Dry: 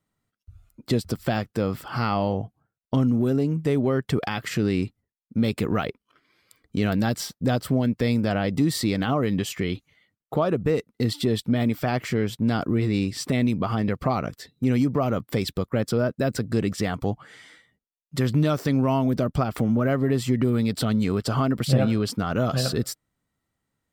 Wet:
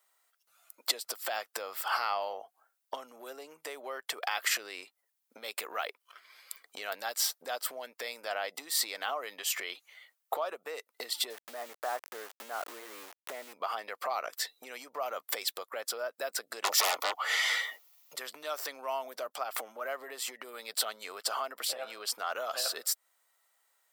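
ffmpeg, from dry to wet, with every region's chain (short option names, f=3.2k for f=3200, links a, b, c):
-filter_complex "[0:a]asettb=1/sr,asplit=3[a][b][c];[a]atrim=end=11.304[d];[b]atrim=start=11.3:end=13.53,asetpts=PTS-STARTPTS,afade=t=in:d=0.004:c=qsin,afade=t=out:st=2.226:d=0.004:c=qsin,lowpass=f=1.6k:w=0.5412,lowpass=f=1.6k:w=1.3066,aeval=exprs='val(0)*gte(abs(val(0)),0.02)':c=same[e];[c]atrim=start=13.526[f];[d][e]acrossfade=d=0.004:c1=hsin:c2=qsin[g];[g][f]acrossfade=d=0.004:c1=qsin:c2=hsin,asettb=1/sr,asplit=3[h][i][j];[h]atrim=end=16.644[k];[i]atrim=start=16.64:end=18.16,asetpts=PTS-STARTPTS,afade=t=in:d=0.004:c=qsin,afade=t=out:st=1.516:d=0.004:c=qsin,equalizer=f=8.7k:w=3.7:g=-14,aeval=exprs='0.211*sin(PI/2*6.31*val(0)/0.211)':c=same,asuperstop=centerf=1600:order=4:qfactor=7.3[l];[j]atrim=start=18.156[m];[k][l]acrossfade=d=0.004:c1=hsin:c2=qsin[n];[n][m]acrossfade=d=0.004:c1=qsin:c2=hsin,acompressor=threshold=-33dB:ratio=10,highpass=f=620:w=0.5412,highpass=f=620:w=1.3066,highshelf=f=8.6k:g=10.5,volume=7.5dB"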